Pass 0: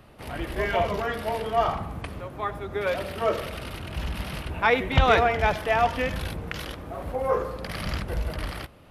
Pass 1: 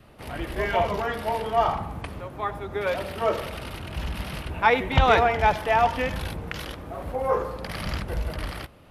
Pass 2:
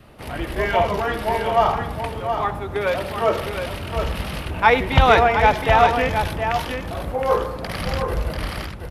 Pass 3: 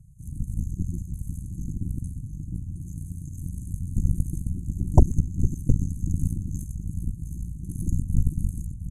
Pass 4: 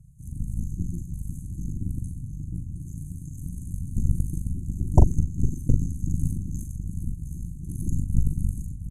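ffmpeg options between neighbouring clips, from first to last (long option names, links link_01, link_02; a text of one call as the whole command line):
ffmpeg -i in.wav -af "adynamicequalizer=threshold=0.01:dfrequency=880:dqfactor=4.9:tfrequency=880:tqfactor=4.9:attack=5:release=100:ratio=0.375:range=3:mode=boostabove:tftype=bell" out.wav
ffmpeg -i in.wav -af "aecho=1:1:717:0.447,volume=4.5dB" out.wav
ffmpeg -i in.wav -af "lowpass=8100,afftfilt=real='re*(1-between(b*sr/4096,190,6200))':imag='im*(1-between(b*sr/4096,190,6200))':win_size=4096:overlap=0.75,aeval=exprs='0.596*(cos(1*acos(clip(val(0)/0.596,-1,1)))-cos(1*PI/2))+0.15*(cos(8*acos(clip(val(0)/0.596,-1,1)))-cos(8*PI/2))':channel_layout=same" out.wav
ffmpeg -i in.wav -filter_complex "[0:a]asplit=2[link_01][link_02];[link_02]adelay=41,volume=-7dB[link_03];[link_01][link_03]amix=inputs=2:normalize=0,volume=-1dB" out.wav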